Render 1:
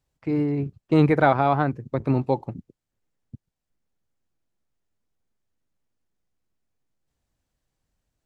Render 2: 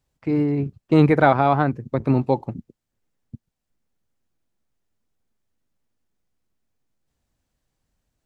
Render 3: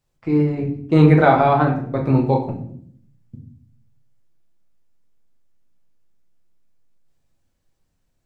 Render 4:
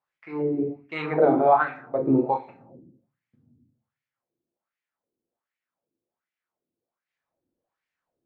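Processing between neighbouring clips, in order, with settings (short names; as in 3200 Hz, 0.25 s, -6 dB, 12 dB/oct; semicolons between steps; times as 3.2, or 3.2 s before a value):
bell 230 Hz +3 dB 0.29 oct; gain +2.5 dB
shoebox room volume 87 m³, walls mixed, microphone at 0.8 m; gain -1 dB
wah 1.3 Hz 320–2200 Hz, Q 3; gain +3.5 dB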